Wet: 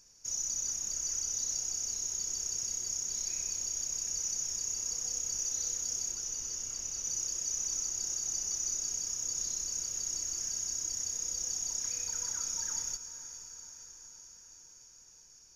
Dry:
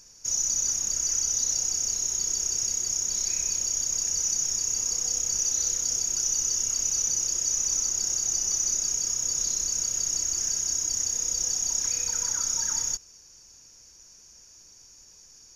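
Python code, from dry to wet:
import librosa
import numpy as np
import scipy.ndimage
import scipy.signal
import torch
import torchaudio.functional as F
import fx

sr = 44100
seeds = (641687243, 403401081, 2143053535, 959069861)

y = fx.high_shelf(x, sr, hz=4800.0, db=-6.0, at=(6.11, 7.05))
y = fx.echo_diffused(y, sr, ms=508, feedback_pct=62, wet_db=-11.5)
y = y * librosa.db_to_amplitude(-8.5)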